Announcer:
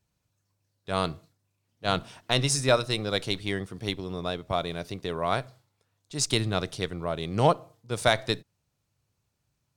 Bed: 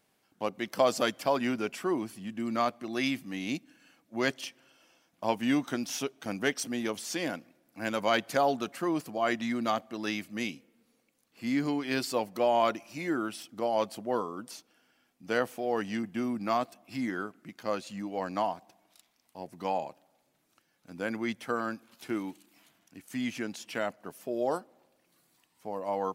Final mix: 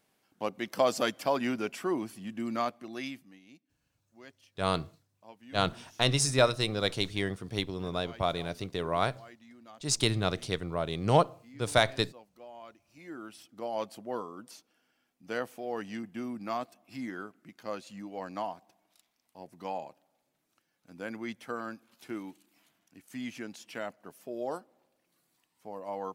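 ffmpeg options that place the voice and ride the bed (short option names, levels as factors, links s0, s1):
-filter_complex "[0:a]adelay=3700,volume=0.841[s0];[1:a]volume=6.68,afade=t=out:st=2.42:d=0.99:silence=0.0794328,afade=t=in:st=12.8:d=0.98:silence=0.133352[s1];[s0][s1]amix=inputs=2:normalize=0"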